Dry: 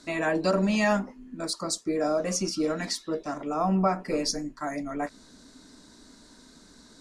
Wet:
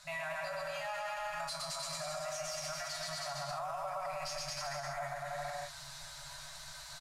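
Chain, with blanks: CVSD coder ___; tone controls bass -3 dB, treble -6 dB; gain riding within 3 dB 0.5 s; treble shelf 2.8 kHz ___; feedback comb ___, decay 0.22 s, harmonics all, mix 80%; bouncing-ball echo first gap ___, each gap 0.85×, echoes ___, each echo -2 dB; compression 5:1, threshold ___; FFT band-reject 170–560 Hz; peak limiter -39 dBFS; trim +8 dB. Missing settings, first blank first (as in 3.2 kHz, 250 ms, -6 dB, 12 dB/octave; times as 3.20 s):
64 kbps, +4.5 dB, 140 Hz, 120 ms, 9, -38 dBFS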